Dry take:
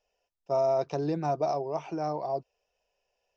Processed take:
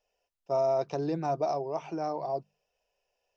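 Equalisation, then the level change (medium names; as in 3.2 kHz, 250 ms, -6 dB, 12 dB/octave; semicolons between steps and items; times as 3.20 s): hum notches 50/100/150/200 Hz; -1.0 dB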